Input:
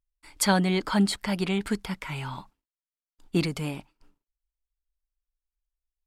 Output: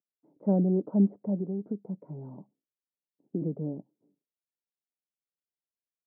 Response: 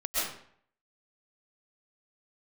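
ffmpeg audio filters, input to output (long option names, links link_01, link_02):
-filter_complex "[0:a]asettb=1/sr,asplit=3[link_01][link_02][link_03];[link_01]atrim=end=1.384[link_04];[link_02]atrim=start=1.38:end=3.41,asetpts=PTS-STARTPTS,afade=type=in:duration=0.004:curve=qsin,afade=type=out:start_time=2.026:duration=0.004:curve=qsin,acompressor=threshold=-29dB:ratio=6[link_05];[link_03]atrim=start=3.406[link_06];[link_04][link_05]acrossfade=duration=0.004:curve1=hsin:curve2=qsin[link_07];[link_07][link_06]acrossfade=duration=0.004:curve1=qsin:curve2=hsin,asuperpass=centerf=300:order=8:qfactor=0.66"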